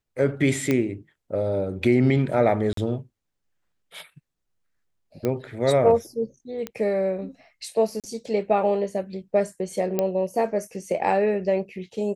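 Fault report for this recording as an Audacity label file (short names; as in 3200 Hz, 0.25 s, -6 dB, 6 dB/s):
0.710000	0.710000	pop -10 dBFS
2.730000	2.770000	gap 43 ms
5.250000	5.250000	pop -13 dBFS
6.670000	6.670000	pop -16 dBFS
8.000000	8.040000	gap 37 ms
9.990000	9.990000	pop -10 dBFS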